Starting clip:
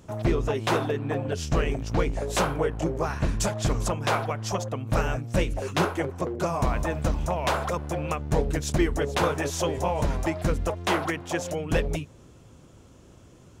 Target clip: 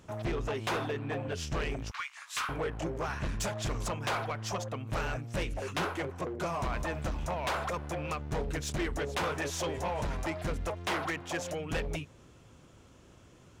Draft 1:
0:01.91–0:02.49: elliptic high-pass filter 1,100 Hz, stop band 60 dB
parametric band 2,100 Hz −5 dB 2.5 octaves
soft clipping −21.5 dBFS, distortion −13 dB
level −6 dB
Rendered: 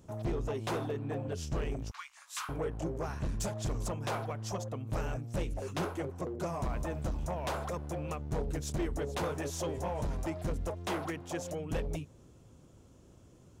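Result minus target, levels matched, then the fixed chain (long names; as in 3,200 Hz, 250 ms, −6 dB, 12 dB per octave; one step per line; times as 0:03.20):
2,000 Hz band −6.5 dB
0:01.91–0:02.49: elliptic high-pass filter 1,100 Hz, stop band 60 dB
parametric band 2,100 Hz +6 dB 2.5 octaves
soft clipping −21.5 dBFS, distortion −11 dB
level −6 dB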